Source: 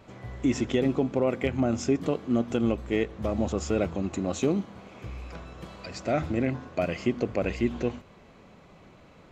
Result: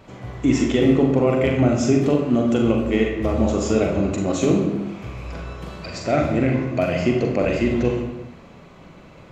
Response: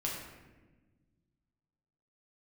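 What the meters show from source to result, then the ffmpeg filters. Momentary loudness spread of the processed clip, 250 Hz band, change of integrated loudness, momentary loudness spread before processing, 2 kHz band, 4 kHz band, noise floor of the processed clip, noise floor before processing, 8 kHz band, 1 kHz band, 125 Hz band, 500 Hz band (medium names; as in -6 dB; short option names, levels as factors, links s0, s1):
16 LU, +8.5 dB, +8.0 dB, 16 LU, +7.5 dB, +7.5 dB, -45 dBFS, -54 dBFS, +7.0 dB, +7.5 dB, +9.5 dB, +8.0 dB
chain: -filter_complex "[0:a]asplit=2[s0][s1];[1:a]atrim=start_sample=2205,afade=t=out:st=0.45:d=0.01,atrim=end_sample=20286,adelay=41[s2];[s1][s2]afir=irnorm=-1:irlink=0,volume=0.631[s3];[s0][s3]amix=inputs=2:normalize=0,volume=1.78"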